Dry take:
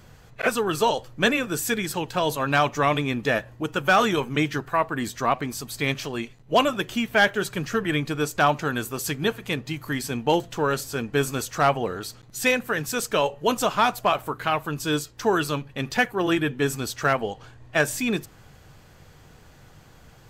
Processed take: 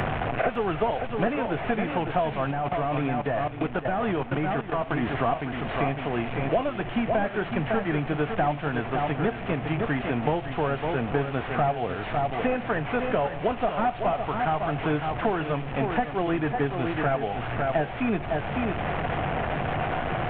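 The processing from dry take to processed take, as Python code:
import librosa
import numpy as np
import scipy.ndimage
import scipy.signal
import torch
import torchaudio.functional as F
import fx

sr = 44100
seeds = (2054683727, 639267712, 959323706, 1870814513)

y = fx.delta_mod(x, sr, bps=16000, step_db=-29.0)
y = fx.peak_eq(y, sr, hz=710.0, db=10.5, octaves=0.39)
y = y + 10.0 ** (-8.5 / 20.0) * np.pad(y, (int(554 * sr / 1000.0), 0))[:len(y)]
y = fx.level_steps(y, sr, step_db=14, at=(2.51, 5.03))
y = fx.low_shelf(y, sr, hz=99.0, db=7.0)
y = fx.band_squash(y, sr, depth_pct=100)
y = F.gain(torch.from_numpy(y), -4.5).numpy()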